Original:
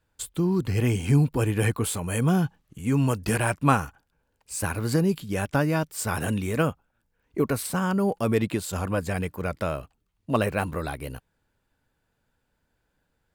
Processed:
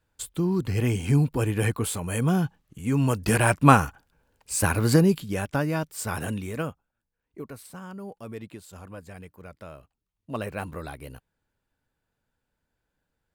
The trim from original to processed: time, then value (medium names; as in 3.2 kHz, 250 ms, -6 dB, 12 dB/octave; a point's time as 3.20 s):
2.94 s -1 dB
3.58 s +5 dB
4.95 s +5 dB
5.47 s -2.5 dB
6.18 s -2.5 dB
7.49 s -15 dB
9.64 s -15 dB
10.64 s -6 dB